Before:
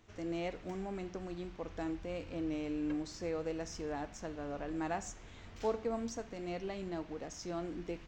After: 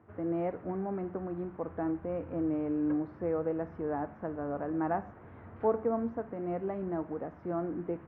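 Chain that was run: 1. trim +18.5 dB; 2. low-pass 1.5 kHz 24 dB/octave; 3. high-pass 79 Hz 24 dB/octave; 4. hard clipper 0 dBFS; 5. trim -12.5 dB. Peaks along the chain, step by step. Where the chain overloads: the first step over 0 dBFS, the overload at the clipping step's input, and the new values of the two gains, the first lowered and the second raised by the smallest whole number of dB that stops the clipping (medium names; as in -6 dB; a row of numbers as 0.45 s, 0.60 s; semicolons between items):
-4.0 dBFS, -4.0 dBFS, -4.0 dBFS, -4.0 dBFS, -16.5 dBFS; nothing clips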